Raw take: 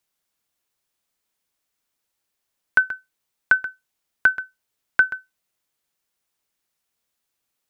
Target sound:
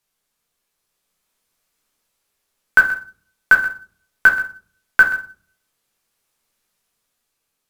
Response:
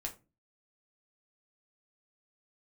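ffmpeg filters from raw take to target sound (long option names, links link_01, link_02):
-filter_complex "[1:a]atrim=start_sample=2205,asetrate=27783,aresample=44100[link_01];[0:a][link_01]afir=irnorm=-1:irlink=0,asplit=2[link_02][link_03];[link_03]acrusher=bits=3:mode=log:mix=0:aa=0.000001,volume=-9.5dB[link_04];[link_02][link_04]amix=inputs=2:normalize=0,dynaudnorm=framelen=390:gausssize=7:maxgain=7dB"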